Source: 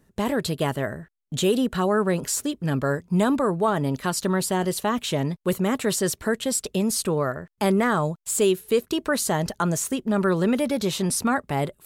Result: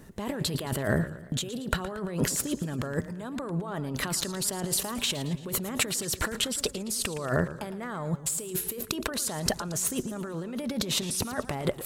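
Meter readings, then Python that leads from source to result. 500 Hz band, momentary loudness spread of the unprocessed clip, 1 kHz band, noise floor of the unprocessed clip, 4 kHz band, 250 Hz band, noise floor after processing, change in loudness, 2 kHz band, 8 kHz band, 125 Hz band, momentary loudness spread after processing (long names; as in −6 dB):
−10.0 dB, 5 LU, −10.5 dB, −66 dBFS, 0.0 dB, −9.0 dB, −44 dBFS, −6.0 dB, −5.0 dB, −1.5 dB, −5.0 dB, 6 LU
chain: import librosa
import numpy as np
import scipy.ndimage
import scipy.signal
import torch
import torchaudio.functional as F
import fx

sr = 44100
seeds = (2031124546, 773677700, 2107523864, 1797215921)

y = fx.over_compress(x, sr, threshold_db=-34.0, ratio=-1.0)
y = fx.echo_warbled(y, sr, ms=113, feedback_pct=51, rate_hz=2.8, cents=153, wet_db=-14.0)
y = y * 10.0 ** (2.0 / 20.0)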